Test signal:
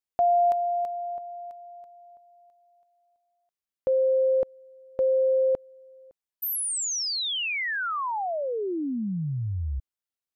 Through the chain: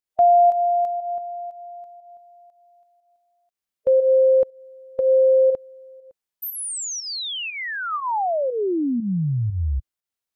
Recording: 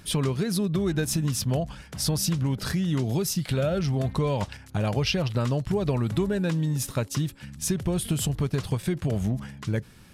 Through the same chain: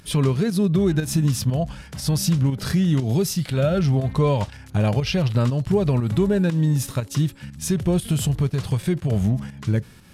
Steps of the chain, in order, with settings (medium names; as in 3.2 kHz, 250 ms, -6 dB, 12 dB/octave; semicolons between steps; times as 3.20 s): volume shaper 120 bpm, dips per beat 1, -9 dB, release 162 ms; harmonic-percussive split harmonic +7 dB